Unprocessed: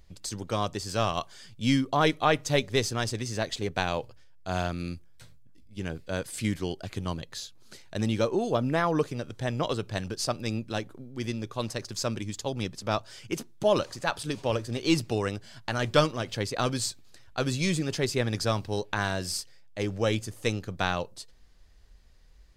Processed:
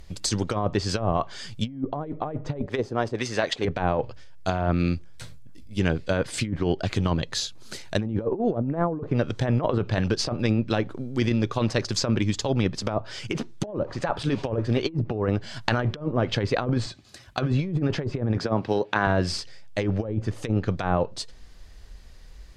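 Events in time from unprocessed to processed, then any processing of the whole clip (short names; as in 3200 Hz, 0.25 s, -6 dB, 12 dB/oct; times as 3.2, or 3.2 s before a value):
2.66–3.65 RIAA curve recording
16.86–17.52 notch comb 460 Hz
18.38–19.07 HPF 170 Hz
whole clip: treble ducked by the level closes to 620 Hz, closed at -22 dBFS; negative-ratio compressor -31 dBFS, ratio -0.5; gain +8 dB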